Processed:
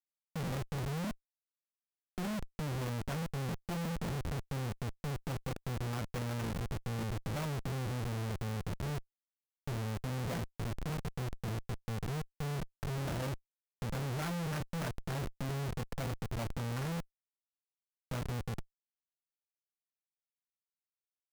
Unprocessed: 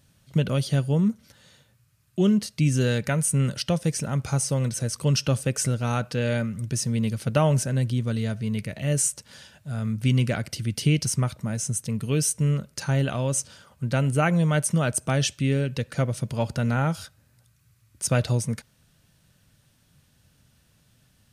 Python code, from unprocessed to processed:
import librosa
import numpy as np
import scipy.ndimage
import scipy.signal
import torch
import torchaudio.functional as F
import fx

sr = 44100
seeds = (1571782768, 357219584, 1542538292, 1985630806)

y = fx.cvsd(x, sr, bps=16000)
y = fx.comb_fb(y, sr, f0_hz=170.0, decay_s=0.29, harmonics='all', damping=0.0, mix_pct=80)
y = fx.schmitt(y, sr, flips_db=-41.0)